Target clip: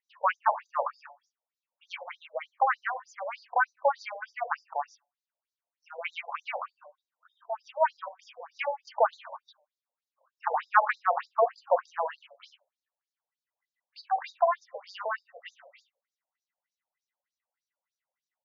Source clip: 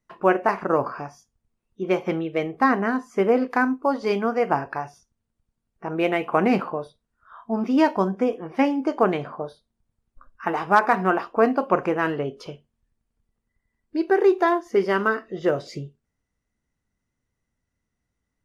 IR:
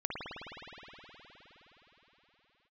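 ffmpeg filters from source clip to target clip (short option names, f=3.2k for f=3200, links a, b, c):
-filter_complex "[0:a]asettb=1/sr,asplit=3[a][b][c];[a]atrim=end=8.634[d];[b]atrim=start=8.63:end=9.39,asetpts=PTS-STARTPTS,afade=t=in:d=0.004:c=qsin,afade=t=out:st=0.756:d=0.004:c=qsin,aecho=1:1:3.4:0.55,atrim=end_sample=33516[e];[c]atrim=start=9.386[f];[d][e]acrossfade=d=0.004:c1=hsin:c2=qsin[g];[g][f]acrossfade=d=0.004:c1=qsin:c2=hsin,asplit=2[h][i];[i]adelay=94,lowpass=f=2.4k:p=1,volume=-21.5dB,asplit=2[j][k];[k]adelay=94,lowpass=f=2.4k:p=1,volume=0.16[l];[h][j][l]amix=inputs=3:normalize=0,afftfilt=real='re*between(b*sr/1024,660*pow(5300/660,0.5+0.5*sin(2*PI*3.3*pts/sr))/1.41,660*pow(5300/660,0.5+0.5*sin(2*PI*3.3*pts/sr))*1.41)':imag='im*between(b*sr/1024,660*pow(5300/660,0.5+0.5*sin(2*PI*3.3*pts/sr))/1.41,660*pow(5300/660,0.5+0.5*sin(2*PI*3.3*pts/sr))*1.41)':win_size=1024:overlap=0.75"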